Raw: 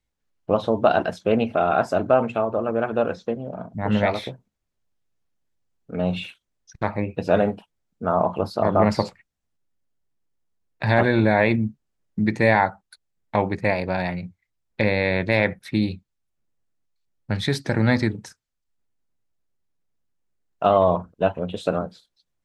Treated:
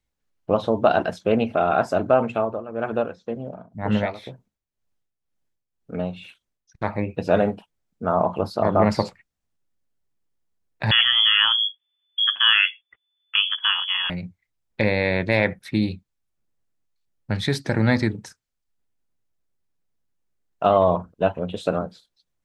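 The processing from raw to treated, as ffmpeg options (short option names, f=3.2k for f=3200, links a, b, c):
-filter_complex "[0:a]asettb=1/sr,asplit=3[a][b][c];[a]atrim=end=2.424[d];[b]atrim=start=2.42:end=6.93,asetpts=PTS-STARTPTS,afade=t=in:d=0.004:c=qsin,afade=t=out:st=4.506:d=0.004:c=qsin,tremolo=f=2:d=0.73[e];[c]atrim=start=6.926[f];[d][e]acrossfade=d=0.004:c1=hsin:c2=qsin[g];[g][f]acrossfade=d=0.004:c1=qsin:c2=hsin,asettb=1/sr,asplit=3[h][i][j];[h]atrim=end=10.914[k];[i]atrim=start=10.91:end=14.1,asetpts=PTS-STARTPTS,afade=t=in:d=0.004:c=qsin,afade=t=out:st=3.186:d=0.004:c=qsin,lowpass=f=3k:t=q:w=0.5098,lowpass=f=3k:t=q:w=0.6013,lowpass=f=3k:t=q:w=0.9,lowpass=f=3k:t=q:w=2.563,afreqshift=-3500[l];[j]atrim=start=14.096[m];[k][l]acrossfade=d=0.004:c1=hsin:c2=qsin[n];[n][m]acrossfade=d=0.004:c1=qsin:c2=hsin"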